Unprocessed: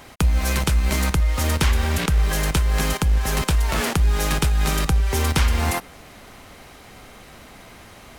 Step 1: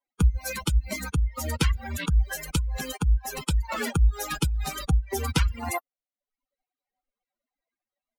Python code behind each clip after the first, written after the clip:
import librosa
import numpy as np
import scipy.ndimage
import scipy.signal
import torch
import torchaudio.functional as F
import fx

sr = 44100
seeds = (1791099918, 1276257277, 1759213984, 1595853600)

y = fx.bin_expand(x, sr, power=3.0)
y = fx.dereverb_blind(y, sr, rt60_s=0.59)
y = y * 10.0 ** (1.5 / 20.0)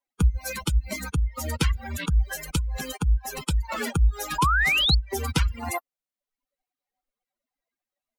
y = fx.spec_paint(x, sr, seeds[0], shape='rise', start_s=4.38, length_s=0.57, low_hz=910.0, high_hz=4500.0, level_db=-22.0)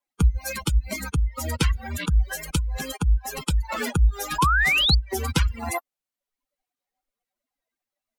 y = fx.wow_flutter(x, sr, seeds[1], rate_hz=2.1, depth_cents=39.0)
y = y * 10.0 ** (1.5 / 20.0)